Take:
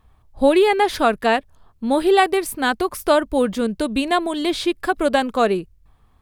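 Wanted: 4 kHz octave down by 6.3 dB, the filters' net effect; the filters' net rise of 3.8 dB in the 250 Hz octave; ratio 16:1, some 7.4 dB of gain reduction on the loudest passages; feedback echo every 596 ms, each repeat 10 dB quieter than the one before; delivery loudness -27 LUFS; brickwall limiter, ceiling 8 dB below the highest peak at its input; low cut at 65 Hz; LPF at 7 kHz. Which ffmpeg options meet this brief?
-af "highpass=65,lowpass=7000,equalizer=f=250:t=o:g=5,equalizer=f=4000:t=o:g=-8,acompressor=threshold=0.158:ratio=16,alimiter=limit=0.168:level=0:latency=1,aecho=1:1:596|1192|1788|2384:0.316|0.101|0.0324|0.0104,volume=0.794"

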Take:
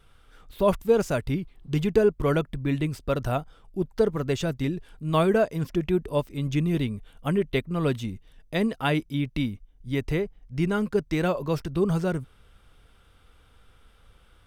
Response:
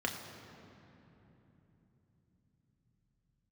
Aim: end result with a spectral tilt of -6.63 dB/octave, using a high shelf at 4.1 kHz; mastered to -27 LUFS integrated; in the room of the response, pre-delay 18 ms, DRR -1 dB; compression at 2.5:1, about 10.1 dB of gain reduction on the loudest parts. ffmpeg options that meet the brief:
-filter_complex "[0:a]highshelf=f=4100:g=4.5,acompressor=threshold=0.0282:ratio=2.5,asplit=2[s0][s1];[1:a]atrim=start_sample=2205,adelay=18[s2];[s1][s2]afir=irnorm=-1:irlink=0,volume=0.596[s3];[s0][s3]amix=inputs=2:normalize=0,volume=1.26"

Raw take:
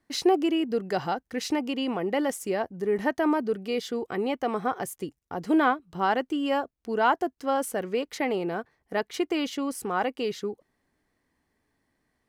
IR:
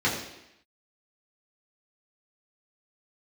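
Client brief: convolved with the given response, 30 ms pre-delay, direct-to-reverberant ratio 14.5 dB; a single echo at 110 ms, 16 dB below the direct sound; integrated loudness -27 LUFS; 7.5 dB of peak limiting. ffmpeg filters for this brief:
-filter_complex "[0:a]alimiter=limit=0.112:level=0:latency=1,aecho=1:1:110:0.158,asplit=2[s0][s1];[1:a]atrim=start_sample=2205,adelay=30[s2];[s1][s2]afir=irnorm=-1:irlink=0,volume=0.0398[s3];[s0][s3]amix=inputs=2:normalize=0,volume=1.33"

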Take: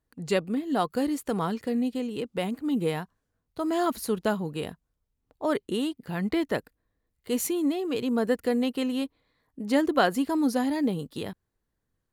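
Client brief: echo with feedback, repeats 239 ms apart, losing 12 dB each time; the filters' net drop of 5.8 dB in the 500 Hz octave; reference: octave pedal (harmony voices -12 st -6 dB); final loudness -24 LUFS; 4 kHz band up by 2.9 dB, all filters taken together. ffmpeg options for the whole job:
-filter_complex "[0:a]equalizer=f=500:t=o:g=-7.5,equalizer=f=4000:t=o:g=4,aecho=1:1:239|478|717:0.251|0.0628|0.0157,asplit=2[s0][s1];[s1]asetrate=22050,aresample=44100,atempo=2,volume=0.501[s2];[s0][s2]amix=inputs=2:normalize=0,volume=1.88"

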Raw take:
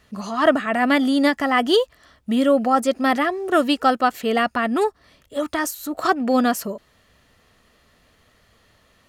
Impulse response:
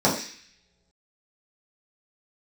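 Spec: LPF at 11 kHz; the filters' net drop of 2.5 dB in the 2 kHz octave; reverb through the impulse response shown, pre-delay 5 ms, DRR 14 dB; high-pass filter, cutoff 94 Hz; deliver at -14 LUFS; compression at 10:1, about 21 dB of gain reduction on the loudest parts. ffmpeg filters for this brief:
-filter_complex "[0:a]highpass=94,lowpass=11000,equalizer=f=2000:t=o:g=-3,acompressor=threshold=0.0251:ratio=10,asplit=2[s0][s1];[1:a]atrim=start_sample=2205,adelay=5[s2];[s1][s2]afir=irnorm=-1:irlink=0,volume=0.0266[s3];[s0][s3]amix=inputs=2:normalize=0,volume=11.2"

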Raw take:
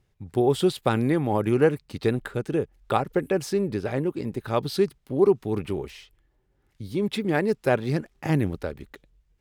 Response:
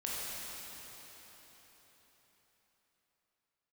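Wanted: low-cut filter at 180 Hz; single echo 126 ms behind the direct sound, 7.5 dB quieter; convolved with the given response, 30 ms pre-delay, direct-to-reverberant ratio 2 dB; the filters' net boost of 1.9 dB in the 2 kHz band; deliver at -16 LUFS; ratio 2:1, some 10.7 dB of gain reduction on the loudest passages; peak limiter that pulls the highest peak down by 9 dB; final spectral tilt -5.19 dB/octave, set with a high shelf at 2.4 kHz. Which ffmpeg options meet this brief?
-filter_complex "[0:a]highpass=180,equalizer=f=2000:t=o:g=4.5,highshelf=f=2400:g=-4.5,acompressor=threshold=0.0178:ratio=2,alimiter=level_in=1.06:limit=0.0631:level=0:latency=1,volume=0.944,aecho=1:1:126:0.422,asplit=2[s0][s1];[1:a]atrim=start_sample=2205,adelay=30[s2];[s1][s2]afir=irnorm=-1:irlink=0,volume=0.473[s3];[s0][s3]amix=inputs=2:normalize=0,volume=8.41"

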